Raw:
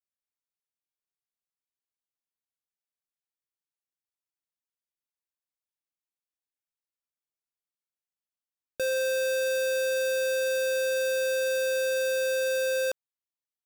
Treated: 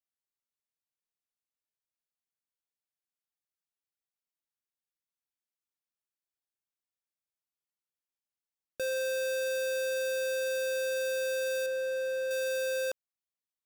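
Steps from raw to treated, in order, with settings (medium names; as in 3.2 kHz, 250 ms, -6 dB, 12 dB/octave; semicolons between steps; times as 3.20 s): 11.66–12.31 s: treble shelf 2.8 kHz -11 dB; trim -4.5 dB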